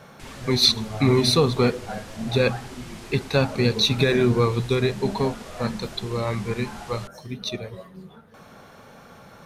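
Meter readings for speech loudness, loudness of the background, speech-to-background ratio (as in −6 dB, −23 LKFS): −22.5 LKFS, −41.5 LKFS, 19.0 dB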